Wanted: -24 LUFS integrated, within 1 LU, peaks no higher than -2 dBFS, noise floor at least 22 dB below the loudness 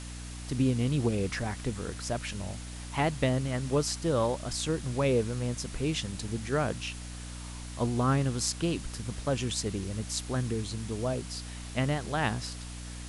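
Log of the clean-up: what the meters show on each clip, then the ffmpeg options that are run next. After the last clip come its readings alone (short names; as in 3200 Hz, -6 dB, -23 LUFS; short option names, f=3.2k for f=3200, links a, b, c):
hum 60 Hz; harmonics up to 300 Hz; hum level -39 dBFS; noise floor -41 dBFS; noise floor target -54 dBFS; loudness -31.5 LUFS; peak -11.0 dBFS; loudness target -24.0 LUFS
-> -af "bandreject=f=60:t=h:w=6,bandreject=f=120:t=h:w=6,bandreject=f=180:t=h:w=6,bandreject=f=240:t=h:w=6,bandreject=f=300:t=h:w=6"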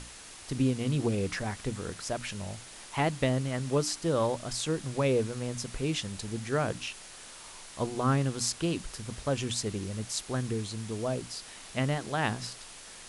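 hum none; noise floor -48 dBFS; noise floor target -54 dBFS
-> -af "afftdn=nr=6:nf=-48"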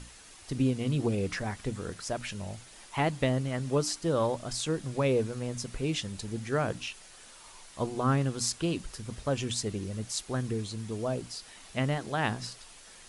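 noise floor -52 dBFS; noise floor target -54 dBFS
-> -af "afftdn=nr=6:nf=-52"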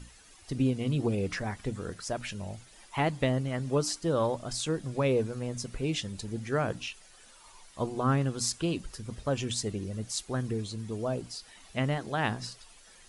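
noise floor -56 dBFS; loudness -32.0 LUFS; peak -11.5 dBFS; loudness target -24.0 LUFS
-> -af "volume=8dB"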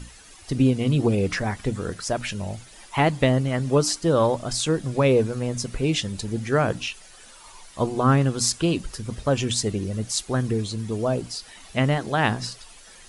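loudness -24.0 LUFS; peak -3.5 dBFS; noise floor -48 dBFS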